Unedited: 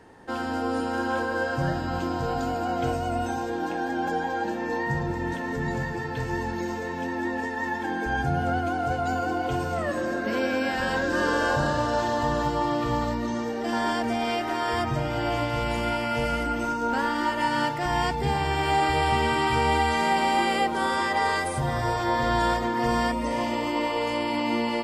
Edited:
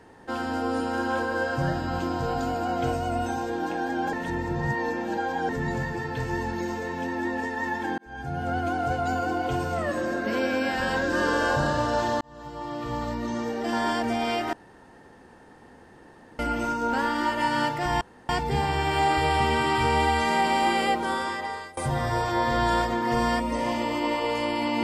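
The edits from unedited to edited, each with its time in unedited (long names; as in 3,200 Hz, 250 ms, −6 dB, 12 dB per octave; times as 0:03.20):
0:04.13–0:05.49: reverse
0:07.98–0:08.68: fade in
0:12.21–0:13.48: fade in
0:14.53–0:16.39: fill with room tone
0:18.01: splice in room tone 0.28 s
0:20.66–0:21.49: fade out, to −23.5 dB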